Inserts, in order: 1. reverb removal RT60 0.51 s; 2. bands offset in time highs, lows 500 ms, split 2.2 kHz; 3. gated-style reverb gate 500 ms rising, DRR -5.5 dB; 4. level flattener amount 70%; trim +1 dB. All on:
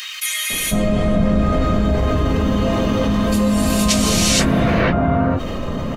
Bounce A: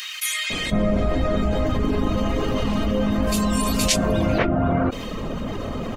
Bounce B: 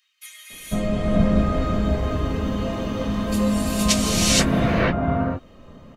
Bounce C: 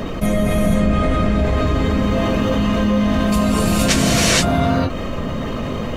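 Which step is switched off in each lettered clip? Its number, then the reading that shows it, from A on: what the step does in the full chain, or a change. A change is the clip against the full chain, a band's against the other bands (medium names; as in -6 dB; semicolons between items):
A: 3, momentary loudness spread change +4 LU; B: 4, crest factor change +3.5 dB; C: 2, momentary loudness spread change +5 LU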